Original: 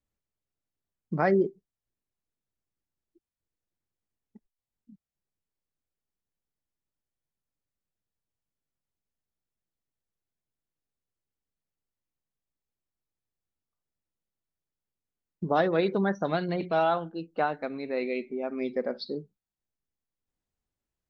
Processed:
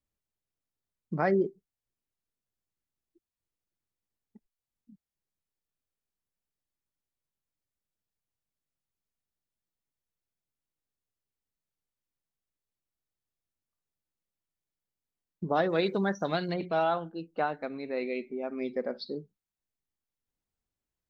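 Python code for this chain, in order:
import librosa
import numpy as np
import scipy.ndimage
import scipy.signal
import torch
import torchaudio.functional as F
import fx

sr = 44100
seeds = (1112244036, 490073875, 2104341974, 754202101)

y = fx.high_shelf(x, sr, hz=3900.0, db=12.0, at=(15.69, 16.54))
y = y * 10.0 ** (-2.5 / 20.0)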